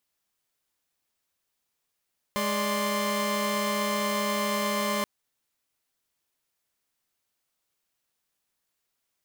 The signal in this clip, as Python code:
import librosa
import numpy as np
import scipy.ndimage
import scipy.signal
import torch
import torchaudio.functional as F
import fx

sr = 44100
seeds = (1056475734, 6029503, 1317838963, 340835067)

y = fx.chord(sr, length_s=2.68, notes=(56, 74, 84), wave='saw', level_db=-27.5)